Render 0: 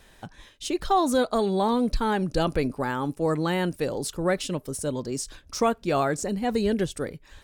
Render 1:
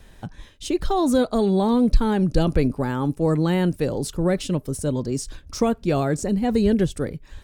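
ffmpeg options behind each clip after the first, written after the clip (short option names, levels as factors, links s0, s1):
-filter_complex "[0:a]lowshelf=f=300:g=10.5,acrossover=split=670|2300[s0][s1][s2];[s1]alimiter=level_in=1.06:limit=0.0631:level=0:latency=1:release=36,volume=0.944[s3];[s0][s3][s2]amix=inputs=3:normalize=0"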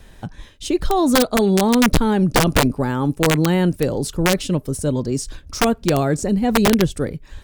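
-af "aeval=exprs='(mod(3.55*val(0)+1,2)-1)/3.55':c=same,volume=1.5"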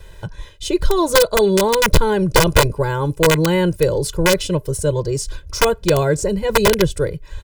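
-af "aecho=1:1:2:0.97"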